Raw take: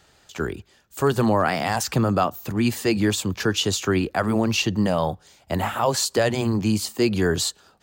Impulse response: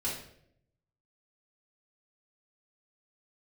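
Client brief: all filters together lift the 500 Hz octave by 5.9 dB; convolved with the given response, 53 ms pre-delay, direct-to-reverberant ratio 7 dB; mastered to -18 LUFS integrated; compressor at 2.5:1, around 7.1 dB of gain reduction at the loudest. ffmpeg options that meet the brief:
-filter_complex "[0:a]equalizer=f=500:t=o:g=7.5,acompressor=threshold=-21dB:ratio=2.5,asplit=2[a][b];[1:a]atrim=start_sample=2205,adelay=53[c];[b][c]afir=irnorm=-1:irlink=0,volume=-11.5dB[d];[a][d]amix=inputs=2:normalize=0,volume=5.5dB"

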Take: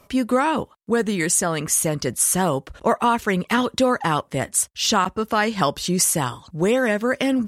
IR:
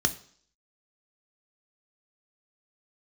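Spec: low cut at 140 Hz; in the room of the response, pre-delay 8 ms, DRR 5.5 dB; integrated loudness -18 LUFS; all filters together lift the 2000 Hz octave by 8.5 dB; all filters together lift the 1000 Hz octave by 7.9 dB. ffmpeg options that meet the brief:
-filter_complex "[0:a]highpass=140,equalizer=f=1k:t=o:g=7.5,equalizer=f=2k:t=o:g=8,asplit=2[a][b];[1:a]atrim=start_sample=2205,adelay=8[c];[b][c]afir=irnorm=-1:irlink=0,volume=-14.5dB[d];[a][d]amix=inputs=2:normalize=0,volume=-2.5dB"

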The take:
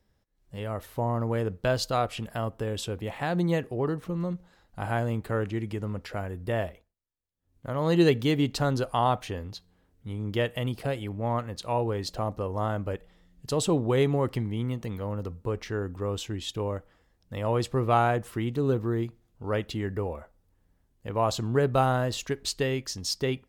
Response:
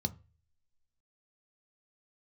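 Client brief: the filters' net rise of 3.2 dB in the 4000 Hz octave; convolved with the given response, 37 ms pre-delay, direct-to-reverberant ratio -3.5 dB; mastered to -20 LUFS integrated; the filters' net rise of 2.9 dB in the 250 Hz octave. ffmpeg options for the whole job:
-filter_complex "[0:a]equalizer=f=250:t=o:g=4,equalizer=f=4k:t=o:g=4,asplit=2[a][b];[1:a]atrim=start_sample=2205,adelay=37[c];[b][c]afir=irnorm=-1:irlink=0,volume=2dB[d];[a][d]amix=inputs=2:normalize=0,volume=-4dB"

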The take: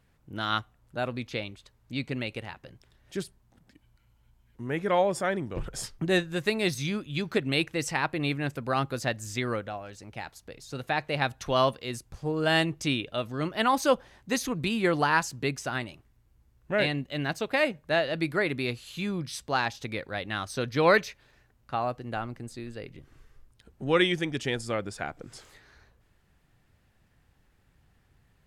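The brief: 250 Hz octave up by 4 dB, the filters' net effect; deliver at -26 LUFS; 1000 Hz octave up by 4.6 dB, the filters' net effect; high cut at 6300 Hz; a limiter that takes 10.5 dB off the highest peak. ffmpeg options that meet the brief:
-af "lowpass=6.3k,equalizer=f=250:t=o:g=5,equalizer=f=1k:t=o:g=5.5,volume=4dB,alimiter=limit=-13dB:level=0:latency=1"

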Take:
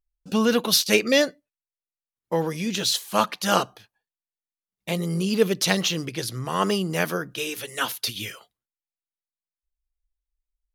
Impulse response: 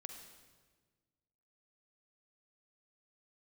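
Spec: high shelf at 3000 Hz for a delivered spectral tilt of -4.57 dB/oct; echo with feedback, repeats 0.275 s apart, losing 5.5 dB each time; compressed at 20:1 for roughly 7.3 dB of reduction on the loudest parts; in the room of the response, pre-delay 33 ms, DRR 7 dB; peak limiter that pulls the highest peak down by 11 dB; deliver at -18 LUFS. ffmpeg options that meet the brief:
-filter_complex "[0:a]highshelf=f=3k:g=-7,acompressor=threshold=-21dB:ratio=20,alimiter=limit=-21dB:level=0:latency=1,aecho=1:1:275|550|825|1100|1375|1650|1925:0.531|0.281|0.149|0.079|0.0419|0.0222|0.0118,asplit=2[a][b];[1:a]atrim=start_sample=2205,adelay=33[c];[b][c]afir=irnorm=-1:irlink=0,volume=-2.5dB[d];[a][d]amix=inputs=2:normalize=0,volume=12dB"

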